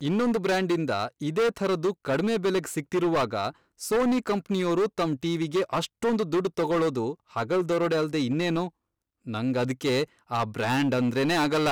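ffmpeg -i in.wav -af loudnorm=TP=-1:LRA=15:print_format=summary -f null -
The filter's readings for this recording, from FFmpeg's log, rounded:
Input Integrated:    -26.6 LUFS
Input True Peak:     -19.2 dBTP
Input LRA:             1.4 LU
Input Threshold:     -36.7 LUFS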